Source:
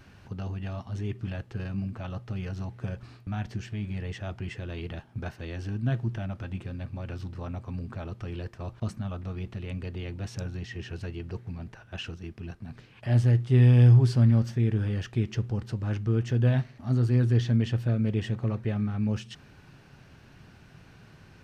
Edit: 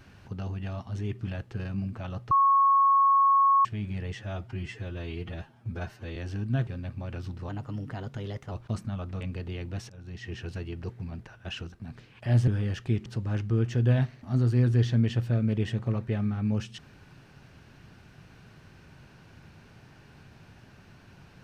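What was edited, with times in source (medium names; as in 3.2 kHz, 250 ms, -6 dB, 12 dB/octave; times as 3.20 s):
2.31–3.65 s: bleep 1.1 kHz -17.5 dBFS
4.15–5.49 s: stretch 1.5×
6.00–6.63 s: delete
7.45–8.64 s: speed 116%
9.33–9.68 s: delete
10.37–10.78 s: fade in, from -23.5 dB
12.20–12.53 s: delete
13.28–14.75 s: delete
15.33–15.62 s: delete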